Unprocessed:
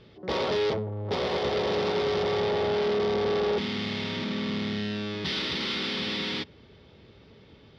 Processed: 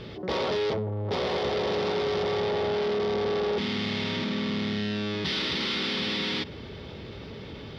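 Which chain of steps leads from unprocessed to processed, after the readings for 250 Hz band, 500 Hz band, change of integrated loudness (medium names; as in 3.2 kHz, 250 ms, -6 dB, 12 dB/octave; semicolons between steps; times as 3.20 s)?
+1.0 dB, -0.5 dB, 0.0 dB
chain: level flattener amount 50%; trim -1.5 dB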